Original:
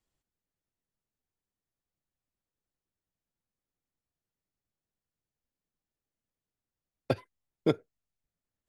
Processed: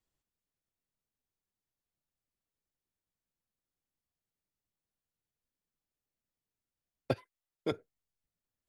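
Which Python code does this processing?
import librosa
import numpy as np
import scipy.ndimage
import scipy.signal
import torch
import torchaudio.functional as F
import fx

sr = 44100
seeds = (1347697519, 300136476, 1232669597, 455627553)

y = fx.low_shelf(x, sr, hz=340.0, db=-11.0, at=(7.14, 7.72))
y = F.gain(torch.from_numpy(y), -3.0).numpy()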